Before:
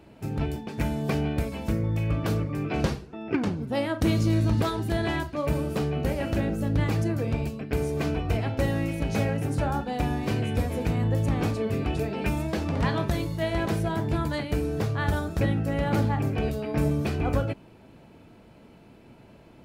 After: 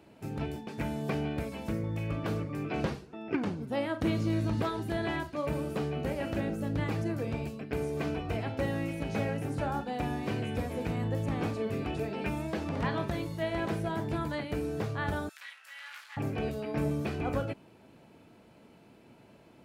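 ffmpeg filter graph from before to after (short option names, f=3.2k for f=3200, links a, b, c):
-filter_complex "[0:a]asettb=1/sr,asplit=3[a][b][c];[a]atrim=end=15.294[d];[b]atrim=start=15.29:end=16.17,asetpts=PTS-STARTPTS,afade=t=in:d=0.004:c=qsin,afade=t=out:st=0.876:d=0.004:c=qsin,asoftclip=type=hard:threshold=-25dB,highpass=f=1.5k:w=0.5412,highpass=f=1.5k:w=1.3066[e];[c]atrim=start=16.166[f];[d][e]acrossfade=d=0.004:c1=hsin:c2=qsin[g];[g][f]acrossfade=d=0.004:c1=qsin:c2=hsin,highpass=f=140:p=1,acrossover=split=3500[h][i];[i]acompressor=threshold=-51dB:ratio=4:attack=1:release=60[j];[h][j]amix=inputs=2:normalize=0,equalizer=f=9.2k:w=0.67:g=2.5,volume=-4dB"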